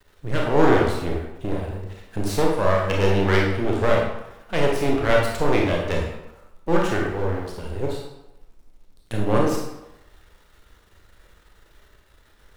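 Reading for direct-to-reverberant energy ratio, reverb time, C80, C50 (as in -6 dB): -2.0 dB, 0.95 s, 5.5 dB, 2.0 dB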